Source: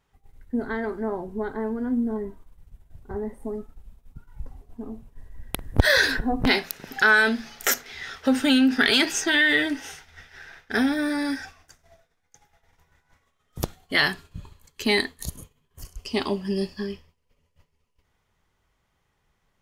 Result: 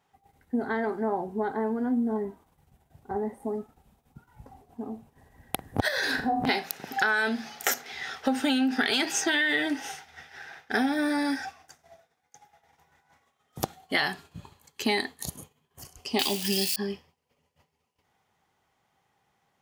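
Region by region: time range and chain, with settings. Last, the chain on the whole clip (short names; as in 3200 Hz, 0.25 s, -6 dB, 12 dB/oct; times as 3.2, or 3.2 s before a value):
5.88–6.49 compressor, threshold -23 dBFS + flutter echo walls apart 7.2 m, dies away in 0.34 s
16.19–16.76 switching spikes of -28 dBFS + resonant high shelf 1800 Hz +12 dB, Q 1.5
whole clip: HPF 130 Hz 12 dB/oct; bell 780 Hz +10.5 dB 0.26 oct; compressor 6:1, threshold -22 dBFS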